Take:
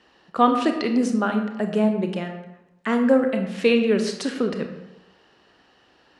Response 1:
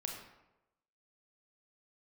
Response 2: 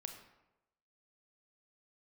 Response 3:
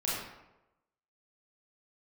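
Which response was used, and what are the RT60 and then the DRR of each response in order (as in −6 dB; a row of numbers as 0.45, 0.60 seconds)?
2; 0.95, 0.95, 0.95 seconds; 1.0, 5.0, −7.5 decibels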